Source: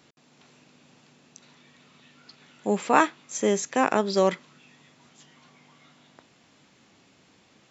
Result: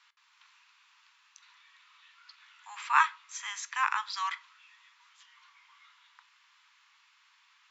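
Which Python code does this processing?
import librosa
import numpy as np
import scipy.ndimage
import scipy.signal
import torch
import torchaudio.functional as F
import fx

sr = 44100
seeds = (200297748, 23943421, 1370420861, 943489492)

y = scipy.signal.sosfilt(scipy.signal.butter(12, 950.0, 'highpass', fs=sr, output='sos'), x)
y = fx.air_absorb(y, sr, metres=110.0)
y = fx.room_shoebox(y, sr, seeds[0], volume_m3=230.0, walls='furnished', distance_m=0.3)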